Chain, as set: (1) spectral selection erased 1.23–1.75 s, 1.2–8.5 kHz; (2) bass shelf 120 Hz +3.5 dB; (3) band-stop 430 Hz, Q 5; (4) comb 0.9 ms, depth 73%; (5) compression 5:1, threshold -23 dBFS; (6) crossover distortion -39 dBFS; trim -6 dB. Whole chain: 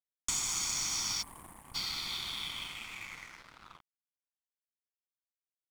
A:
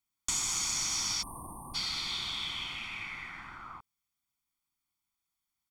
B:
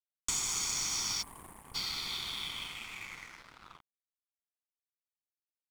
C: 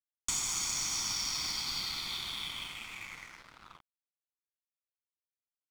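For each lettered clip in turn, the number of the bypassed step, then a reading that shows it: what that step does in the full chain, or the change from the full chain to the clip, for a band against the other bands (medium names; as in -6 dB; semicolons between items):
6, distortion -13 dB; 3, 500 Hz band +2.0 dB; 1, momentary loudness spread change -5 LU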